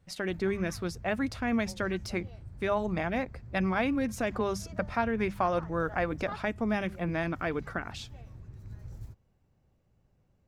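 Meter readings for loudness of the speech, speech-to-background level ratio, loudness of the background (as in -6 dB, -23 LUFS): -31.5 LUFS, 15.0 dB, -46.5 LUFS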